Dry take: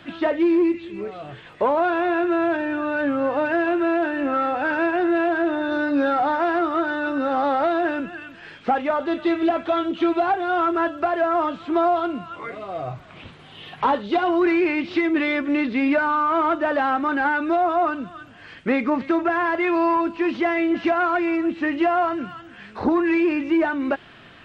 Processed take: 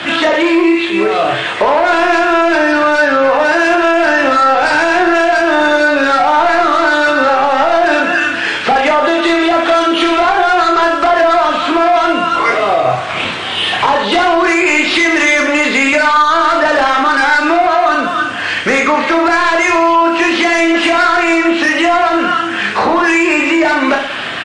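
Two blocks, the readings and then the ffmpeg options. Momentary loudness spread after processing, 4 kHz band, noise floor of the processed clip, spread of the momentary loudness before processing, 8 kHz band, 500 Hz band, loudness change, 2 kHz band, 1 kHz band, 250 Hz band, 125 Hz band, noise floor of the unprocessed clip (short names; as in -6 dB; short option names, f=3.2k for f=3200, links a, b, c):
4 LU, +21.0 dB, -19 dBFS, 12 LU, n/a, +10.0 dB, +11.0 dB, +15.5 dB, +12.0 dB, +6.5 dB, +9.5 dB, -45 dBFS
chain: -filter_complex "[0:a]highpass=57,acrossover=split=480|3000[a][b][c];[a]acompressor=threshold=-43dB:ratio=2[d];[d][b][c]amix=inputs=3:normalize=0,crystalizer=i=2:c=0,asplit=2[e][f];[f]acompressor=threshold=-33dB:ratio=8,volume=1dB[g];[e][g]amix=inputs=2:normalize=0,asplit=2[h][i];[i]highpass=f=720:p=1,volume=15dB,asoftclip=type=tanh:threshold=-8dB[j];[h][j]amix=inputs=2:normalize=0,lowpass=f=2.8k:p=1,volume=-6dB,acrossover=split=460[k][l];[l]asoftclip=type=tanh:threshold=-18dB[m];[k][m]amix=inputs=2:normalize=0,acrusher=bits=8:mix=0:aa=0.000001,aecho=1:1:30|69|119.7|185.6|271.3:0.631|0.398|0.251|0.158|0.1,alimiter=level_in=12dB:limit=-1dB:release=50:level=0:latency=1,volume=-2dB" -ar 22050 -c:a libmp3lame -b:a 40k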